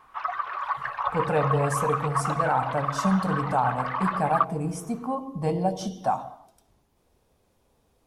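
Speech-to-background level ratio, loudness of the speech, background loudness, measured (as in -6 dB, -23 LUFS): 2.0 dB, -27.5 LUFS, -29.5 LUFS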